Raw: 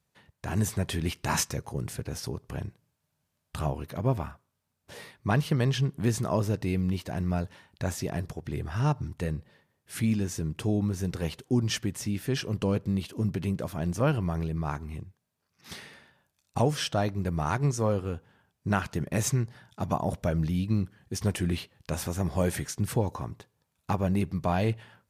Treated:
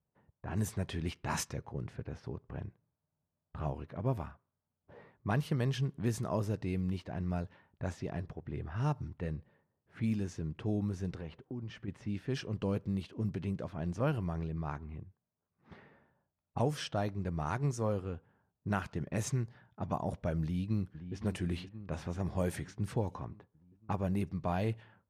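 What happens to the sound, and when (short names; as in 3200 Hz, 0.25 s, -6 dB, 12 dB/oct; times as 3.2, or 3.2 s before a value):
11.11–11.88 compressor 4:1, threshold -32 dBFS
20.42–21.16 echo throw 0.52 s, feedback 65%, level -10.5 dB
whole clip: low-pass opened by the level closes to 980 Hz, open at -22 dBFS; bell 5400 Hz -3 dB 2.5 oct; gain -6.5 dB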